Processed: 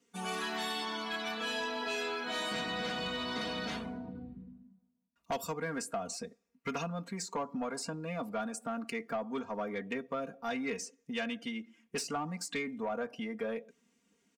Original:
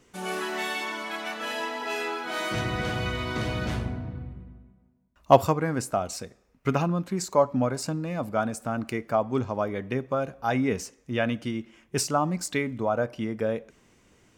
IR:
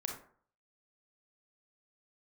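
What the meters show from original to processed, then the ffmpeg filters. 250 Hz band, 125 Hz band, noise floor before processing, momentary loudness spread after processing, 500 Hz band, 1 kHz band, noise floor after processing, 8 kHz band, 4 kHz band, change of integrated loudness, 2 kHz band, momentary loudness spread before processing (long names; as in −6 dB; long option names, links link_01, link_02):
−9.0 dB, −16.0 dB, −63 dBFS, 7 LU, −11.0 dB, −10.0 dB, −76 dBFS, −6.5 dB, −2.0 dB, −9.0 dB, −6.0 dB, 9 LU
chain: -filter_complex "[0:a]highpass=170,afftdn=noise_reduction=13:noise_floor=-47,equalizer=frequency=740:width_type=o:width=2.9:gain=-6.5,aecho=1:1:4.3:0.96,acrossover=split=480|3500[link_01][link_02][link_03];[link_01]acompressor=threshold=-40dB:ratio=4[link_04];[link_02]acompressor=threshold=-33dB:ratio=4[link_05];[link_03]acompressor=threshold=-42dB:ratio=4[link_06];[link_04][link_05][link_06]amix=inputs=3:normalize=0,asoftclip=type=tanh:threshold=-27dB"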